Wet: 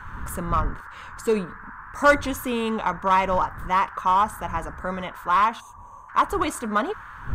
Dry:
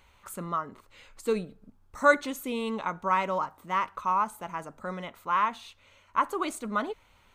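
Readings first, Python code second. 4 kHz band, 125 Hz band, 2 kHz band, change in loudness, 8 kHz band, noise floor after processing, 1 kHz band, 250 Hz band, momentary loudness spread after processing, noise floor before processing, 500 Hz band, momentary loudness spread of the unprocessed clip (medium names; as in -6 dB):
+6.5 dB, +10.0 dB, +4.5 dB, +5.5 dB, +6.0 dB, -44 dBFS, +6.5 dB, +6.0 dB, 14 LU, -62 dBFS, +5.0 dB, 13 LU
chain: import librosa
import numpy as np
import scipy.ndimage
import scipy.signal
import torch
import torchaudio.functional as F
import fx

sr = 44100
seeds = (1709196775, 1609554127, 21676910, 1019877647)

p1 = fx.dmg_wind(x, sr, seeds[0], corner_hz=81.0, level_db=-42.0)
p2 = 10.0 ** (-21.5 / 20.0) * (np.abs((p1 / 10.0 ** (-21.5 / 20.0) + 3.0) % 4.0 - 2.0) - 1.0)
p3 = p1 + F.gain(torch.from_numpy(p2), -8.0).numpy()
p4 = fx.dmg_noise_band(p3, sr, seeds[1], low_hz=940.0, high_hz=1700.0, level_db=-45.0)
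p5 = fx.spec_box(p4, sr, start_s=5.6, length_s=0.49, low_hz=1200.0, high_hz=5900.0, gain_db=-23)
p6 = fx.peak_eq(p5, sr, hz=850.0, db=3.0, octaves=0.46)
p7 = fx.notch(p6, sr, hz=4100.0, q=13.0)
p8 = fx.wow_flutter(p7, sr, seeds[2], rate_hz=2.1, depth_cents=20.0)
y = F.gain(torch.from_numpy(p8), 3.0).numpy()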